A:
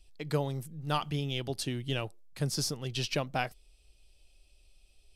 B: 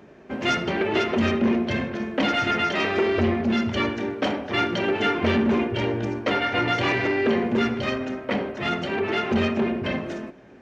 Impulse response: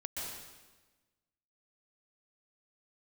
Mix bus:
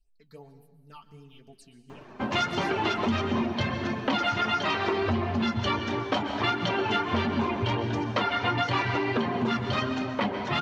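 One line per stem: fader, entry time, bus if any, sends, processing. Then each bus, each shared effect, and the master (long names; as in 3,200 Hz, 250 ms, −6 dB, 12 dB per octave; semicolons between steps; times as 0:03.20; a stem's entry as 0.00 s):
−15.0 dB, 0.00 s, send −11 dB, all-pass phaser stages 6, 2.8 Hz, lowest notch 460–4,600 Hz; notch filter 3,400 Hz, Q 5.5; comb filter 4.5 ms, depth 72%
+2.5 dB, 1.90 s, send −5.5 dB, reverb reduction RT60 0.75 s; graphic EQ with 10 bands 125 Hz +5 dB, 500 Hz −4 dB, 1,000 Hz +10 dB, 2,000 Hz −3 dB, 4,000 Hz +6 dB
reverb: on, RT60 1.2 s, pre-delay 116 ms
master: flanger 1.5 Hz, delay 6.5 ms, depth 4 ms, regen −44%; downward compressor 3 to 1, threshold −25 dBFS, peak gain reduction 8.5 dB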